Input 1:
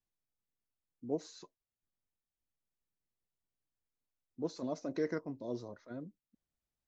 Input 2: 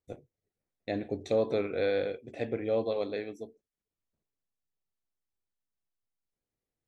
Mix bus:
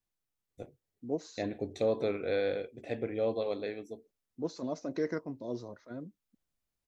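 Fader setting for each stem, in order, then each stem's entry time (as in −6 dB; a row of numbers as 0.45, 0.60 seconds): +2.0, −2.0 decibels; 0.00, 0.50 seconds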